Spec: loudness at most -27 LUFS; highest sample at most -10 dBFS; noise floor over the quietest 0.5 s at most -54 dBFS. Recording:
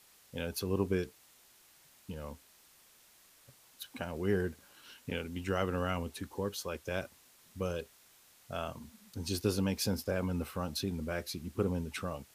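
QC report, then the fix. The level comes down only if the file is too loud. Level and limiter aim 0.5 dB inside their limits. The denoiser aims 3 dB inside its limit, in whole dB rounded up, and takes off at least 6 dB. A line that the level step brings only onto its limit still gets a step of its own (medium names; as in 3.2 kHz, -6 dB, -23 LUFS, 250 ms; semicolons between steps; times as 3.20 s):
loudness -36.5 LUFS: pass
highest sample -17.0 dBFS: pass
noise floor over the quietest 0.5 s -63 dBFS: pass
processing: none needed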